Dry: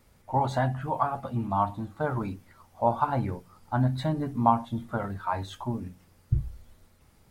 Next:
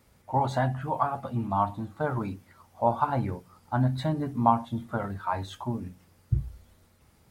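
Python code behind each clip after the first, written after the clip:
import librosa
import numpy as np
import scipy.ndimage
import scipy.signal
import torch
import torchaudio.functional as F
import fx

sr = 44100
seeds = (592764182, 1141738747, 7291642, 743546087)

y = scipy.signal.sosfilt(scipy.signal.butter(2, 45.0, 'highpass', fs=sr, output='sos'), x)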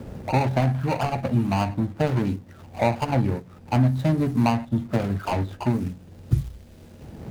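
y = scipy.signal.medfilt(x, 41)
y = fx.band_squash(y, sr, depth_pct=70)
y = y * librosa.db_to_amplitude(8.0)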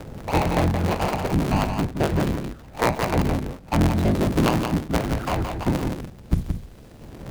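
y = fx.cycle_switch(x, sr, every=3, mode='inverted')
y = y + 10.0 ** (-6.0 / 20.0) * np.pad(y, (int(172 * sr / 1000.0), 0))[:len(y)]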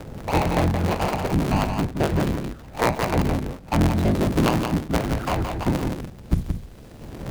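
y = fx.recorder_agc(x, sr, target_db=-14.5, rise_db_per_s=5.6, max_gain_db=30)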